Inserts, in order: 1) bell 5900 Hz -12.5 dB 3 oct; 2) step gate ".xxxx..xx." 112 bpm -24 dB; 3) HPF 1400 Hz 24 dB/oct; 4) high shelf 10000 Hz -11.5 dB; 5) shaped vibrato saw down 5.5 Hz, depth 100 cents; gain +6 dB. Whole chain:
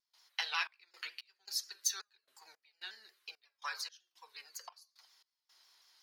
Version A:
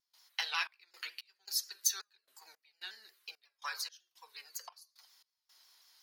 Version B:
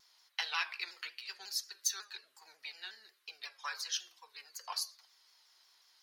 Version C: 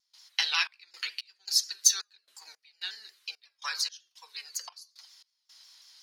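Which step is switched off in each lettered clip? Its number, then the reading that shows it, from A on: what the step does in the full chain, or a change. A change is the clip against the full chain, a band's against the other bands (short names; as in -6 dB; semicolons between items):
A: 4, 8 kHz band +2.5 dB; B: 2, crest factor change -1.5 dB; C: 1, 1 kHz band -8.0 dB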